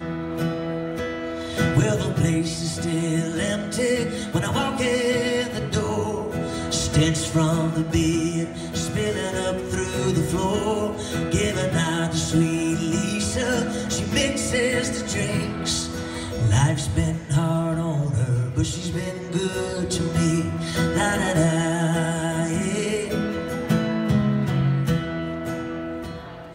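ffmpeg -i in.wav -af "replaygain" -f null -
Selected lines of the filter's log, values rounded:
track_gain = +5.3 dB
track_peak = 0.255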